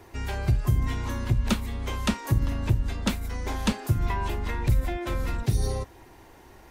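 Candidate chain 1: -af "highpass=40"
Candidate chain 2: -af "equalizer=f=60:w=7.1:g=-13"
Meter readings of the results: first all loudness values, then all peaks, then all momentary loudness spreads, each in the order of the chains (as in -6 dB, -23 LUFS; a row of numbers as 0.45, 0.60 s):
-28.5, -29.0 LUFS; -10.5, -12.5 dBFS; 6, 6 LU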